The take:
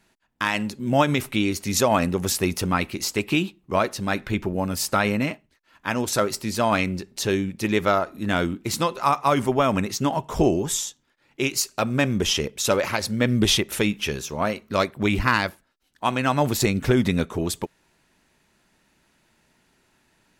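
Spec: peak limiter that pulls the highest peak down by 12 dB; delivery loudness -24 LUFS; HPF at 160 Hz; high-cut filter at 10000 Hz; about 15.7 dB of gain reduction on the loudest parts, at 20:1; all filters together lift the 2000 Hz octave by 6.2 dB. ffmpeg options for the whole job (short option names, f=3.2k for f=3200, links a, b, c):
-af "highpass=160,lowpass=10k,equalizer=f=2k:t=o:g=8,acompressor=threshold=-28dB:ratio=20,volume=11dB,alimiter=limit=-11dB:level=0:latency=1"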